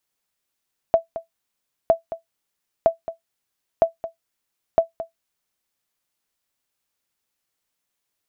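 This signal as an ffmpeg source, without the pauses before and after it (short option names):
-f lavfi -i "aevalsrc='0.501*(sin(2*PI*662*mod(t,0.96))*exp(-6.91*mod(t,0.96)/0.13)+0.2*sin(2*PI*662*max(mod(t,0.96)-0.22,0))*exp(-6.91*max(mod(t,0.96)-0.22,0)/0.13))':d=4.8:s=44100"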